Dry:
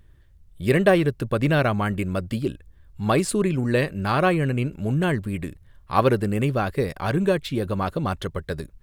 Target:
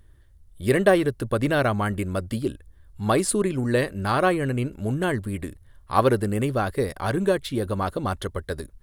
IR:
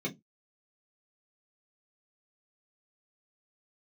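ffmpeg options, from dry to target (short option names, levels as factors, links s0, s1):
-af "equalizer=f=160:t=o:w=0.33:g=-10,equalizer=f=2500:t=o:w=0.33:g=-6,equalizer=f=10000:t=o:w=0.33:g=8"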